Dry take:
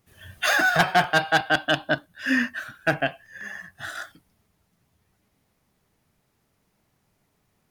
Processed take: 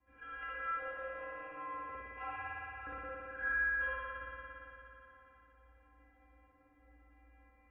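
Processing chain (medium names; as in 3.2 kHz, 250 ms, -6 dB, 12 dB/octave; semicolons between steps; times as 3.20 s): 0.87–2.37 s: sorted samples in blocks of 16 samples; inverted gate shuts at -26 dBFS, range -29 dB; distance through air 280 m; inharmonic resonator 220 Hz, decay 0.76 s, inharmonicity 0.008; spring tank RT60 3.7 s, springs 55 ms, chirp 45 ms, DRR -9 dB; mistuned SSB -160 Hz 220–2600 Hz; trim +17.5 dB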